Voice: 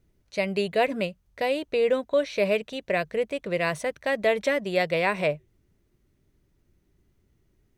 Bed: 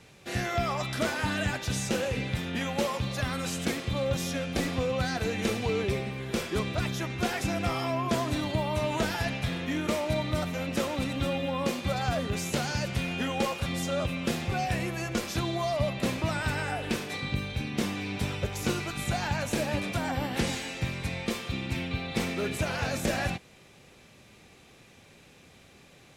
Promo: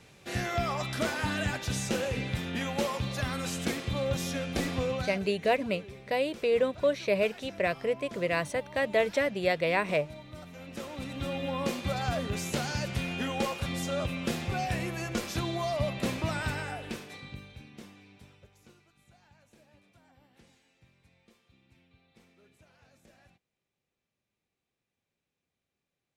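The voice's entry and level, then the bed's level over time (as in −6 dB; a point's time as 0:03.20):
4.70 s, −3.0 dB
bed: 0:04.92 −1.5 dB
0:05.30 −17 dB
0:10.30 −17 dB
0:11.50 −2 dB
0:16.43 −2 dB
0:18.92 −32 dB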